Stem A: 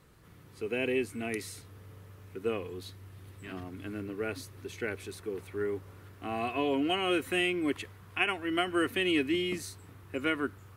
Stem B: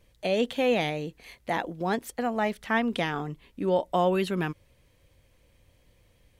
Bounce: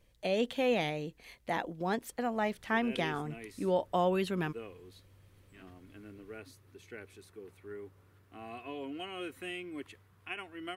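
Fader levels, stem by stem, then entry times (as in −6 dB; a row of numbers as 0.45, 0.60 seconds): −12.0, −5.0 decibels; 2.10, 0.00 seconds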